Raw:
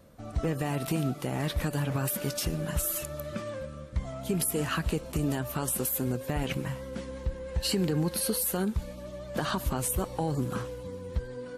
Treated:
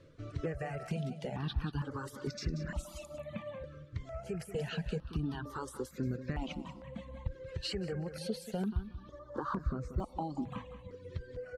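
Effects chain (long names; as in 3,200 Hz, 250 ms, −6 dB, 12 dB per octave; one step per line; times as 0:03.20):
reverb reduction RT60 1.8 s
0:09.19–0:09.98: high shelf with overshoot 1,600 Hz −11 dB, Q 1.5
downward compressor 1.5 to 1, threshold −39 dBFS, peak gain reduction 5.5 dB
high-frequency loss of the air 130 metres
repeating echo 184 ms, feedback 21%, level −12 dB
step-sequenced phaser 2.2 Hz 210–3,100 Hz
level +2 dB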